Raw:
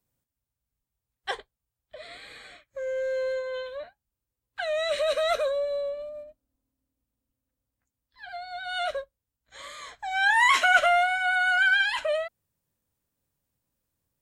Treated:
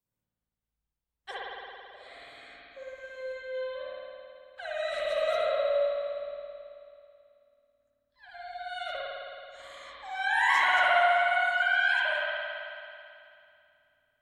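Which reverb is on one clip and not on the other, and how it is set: spring tank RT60 2.6 s, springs 54 ms, chirp 30 ms, DRR -7.5 dB; gain -11 dB

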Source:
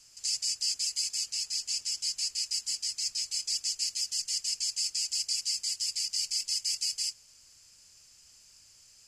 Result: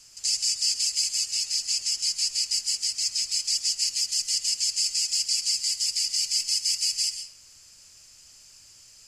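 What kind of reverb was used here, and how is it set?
digital reverb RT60 0.65 s, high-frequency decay 0.55×, pre-delay 90 ms, DRR 7.5 dB; gain +5.5 dB

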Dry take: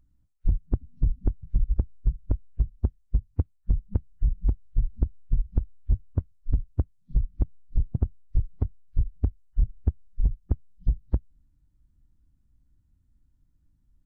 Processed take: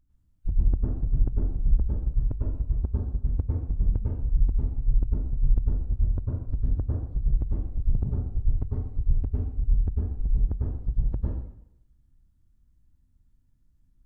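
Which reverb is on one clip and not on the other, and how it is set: plate-style reverb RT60 0.77 s, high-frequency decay 1×, pre-delay 90 ms, DRR -5 dB; gain -5.5 dB

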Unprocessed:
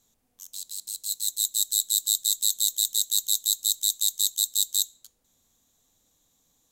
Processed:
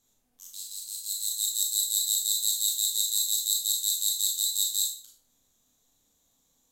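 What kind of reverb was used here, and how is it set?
Schroeder reverb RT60 0.43 s, combs from 25 ms, DRR -1 dB; gain -5 dB

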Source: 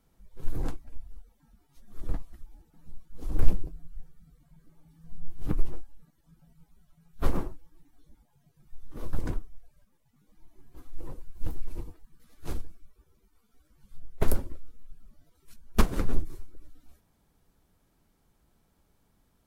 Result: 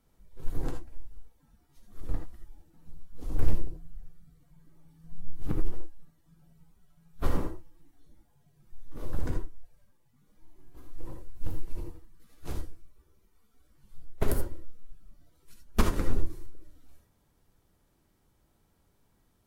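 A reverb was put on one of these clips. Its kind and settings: non-linear reverb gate 0.1 s rising, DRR 3.5 dB; gain -2 dB

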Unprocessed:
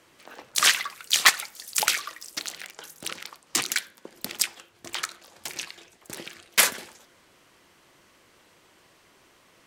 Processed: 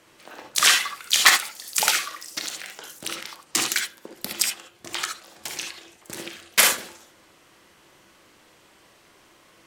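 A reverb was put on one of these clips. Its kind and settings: non-linear reverb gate 90 ms rising, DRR 3.5 dB; gain +1.5 dB

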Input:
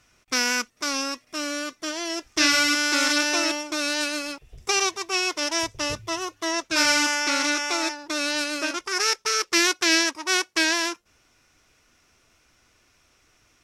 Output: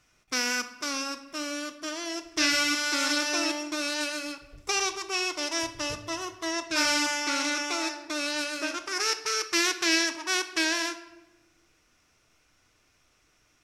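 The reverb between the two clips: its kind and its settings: shoebox room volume 470 m³, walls mixed, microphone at 0.48 m; gain -5 dB

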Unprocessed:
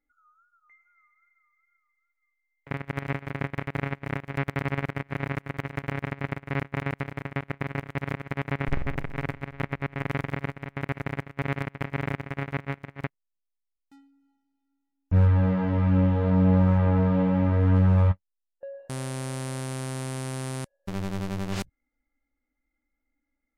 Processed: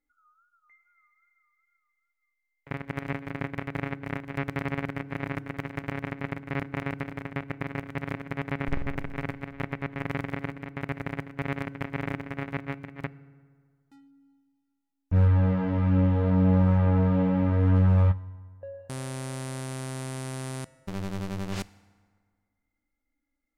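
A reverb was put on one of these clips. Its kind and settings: FDN reverb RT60 1.8 s, low-frequency decay 1×, high-frequency decay 0.6×, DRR 17 dB; gain -2 dB

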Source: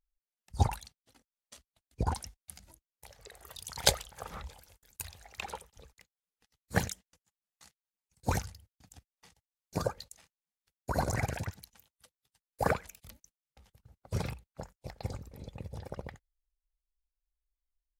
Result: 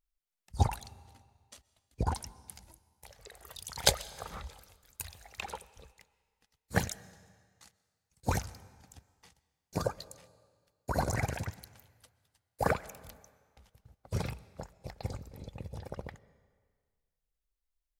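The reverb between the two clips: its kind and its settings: digital reverb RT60 1.7 s, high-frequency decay 0.95×, pre-delay 85 ms, DRR 20 dB

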